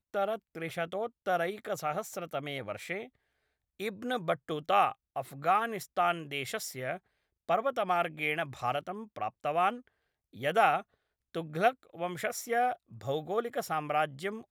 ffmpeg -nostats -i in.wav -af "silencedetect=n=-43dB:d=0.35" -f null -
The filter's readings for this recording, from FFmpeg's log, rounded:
silence_start: 3.06
silence_end: 3.80 | silence_duration: 0.74
silence_start: 6.97
silence_end: 7.49 | silence_duration: 0.51
silence_start: 9.79
silence_end: 10.35 | silence_duration: 0.56
silence_start: 10.82
silence_end: 11.35 | silence_duration: 0.53